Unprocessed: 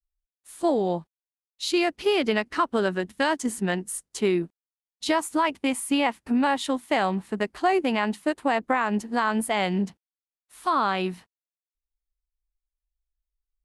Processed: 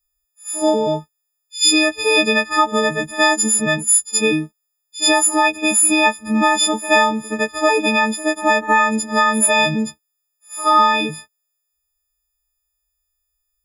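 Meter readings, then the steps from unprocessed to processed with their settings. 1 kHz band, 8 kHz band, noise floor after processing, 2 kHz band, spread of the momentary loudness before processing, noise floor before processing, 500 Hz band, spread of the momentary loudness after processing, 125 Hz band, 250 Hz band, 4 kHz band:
+8.5 dB, +20.0 dB, −75 dBFS, +12.0 dB, 6 LU, below −85 dBFS, +6.5 dB, 9 LU, +4.0 dB, +5.0 dB, +13.0 dB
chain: every partial snapped to a pitch grid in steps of 6 semitones
backwards echo 74 ms −16 dB
level +5 dB

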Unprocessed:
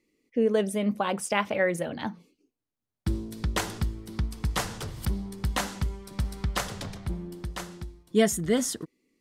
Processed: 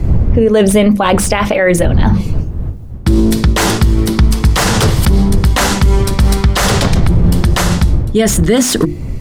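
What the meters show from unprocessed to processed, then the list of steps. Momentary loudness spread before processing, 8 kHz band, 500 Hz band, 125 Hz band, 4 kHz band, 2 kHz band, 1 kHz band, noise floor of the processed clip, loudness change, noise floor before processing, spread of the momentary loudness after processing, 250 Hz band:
12 LU, +17.0 dB, +15.0 dB, +22.0 dB, +18.0 dB, +15.5 dB, +16.0 dB, −22 dBFS, +17.5 dB, below −85 dBFS, 4 LU, +18.0 dB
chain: wind on the microphone 94 Hz −34 dBFS
mains-hum notches 50/100/150/200/250/300/350 Hz
reversed playback
downward compressor 8 to 1, threshold −34 dBFS, peak gain reduction 18 dB
reversed playback
boost into a limiter +33 dB
slew-rate limiting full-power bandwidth 1,700 Hz
level −1 dB

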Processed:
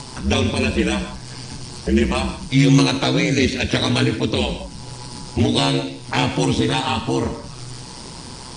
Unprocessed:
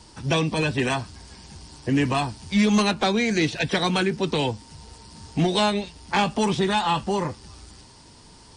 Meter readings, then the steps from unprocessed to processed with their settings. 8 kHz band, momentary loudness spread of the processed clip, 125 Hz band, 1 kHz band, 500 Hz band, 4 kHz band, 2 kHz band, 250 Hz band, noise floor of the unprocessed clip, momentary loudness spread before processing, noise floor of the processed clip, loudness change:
+6.0 dB, 17 LU, +7.0 dB, −0.5 dB, +3.0 dB, +5.0 dB, +2.5 dB, +5.0 dB, −49 dBFS, 12 LU, −36 dBFS, +4.0 dB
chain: upward compression, threshold −31 dBFS
notch filter 1,800 Hz, Q 21
ring modulation 64 Hz
reverb whose tail is shaped and stops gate 190 ms flat, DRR 7.5 dB
dynamic equaliser 970 Hz, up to −7 dB, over −38 dBFS, Q 0.83
level +8 dB

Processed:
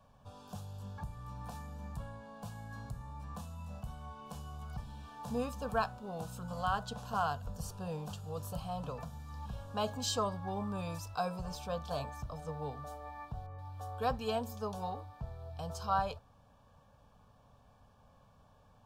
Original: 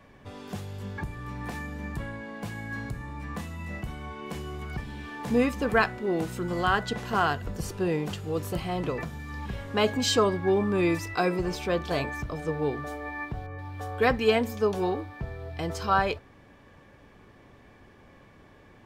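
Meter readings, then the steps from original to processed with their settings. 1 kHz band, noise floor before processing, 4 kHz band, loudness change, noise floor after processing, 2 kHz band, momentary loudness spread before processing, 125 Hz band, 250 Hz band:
−7.0 dB, −54 dBFS, −10.5 dB, −10.5 dB, −64 dBFS, −16.0 dB, 14 LU, −7.5 dB, −13.5 dB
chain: phaser with its sweep stopped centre 840 Hz, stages 4
level −6 dB

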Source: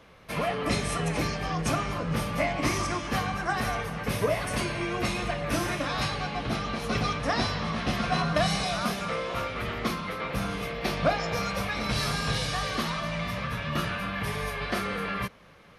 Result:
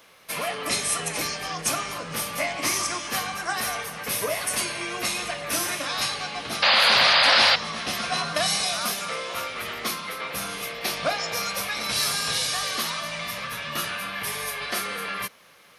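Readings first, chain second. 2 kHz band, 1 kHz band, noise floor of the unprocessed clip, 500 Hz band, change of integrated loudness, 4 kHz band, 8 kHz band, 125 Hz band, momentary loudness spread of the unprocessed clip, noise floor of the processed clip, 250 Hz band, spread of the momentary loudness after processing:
+6.0 dB, +2.0 dB, −46 dBFS, −1.0 dB, +5.0 dB, +10.5 dB, +11.5 dB, −11.0 dB, 5 LU, −46 dBFS, −7.5 dB, 13 LU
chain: RIAA equalisation recording
sound drawn into the spectrogram noise, 0:06.62–0:07.56, 510–5,000 Hz −18 dBFS

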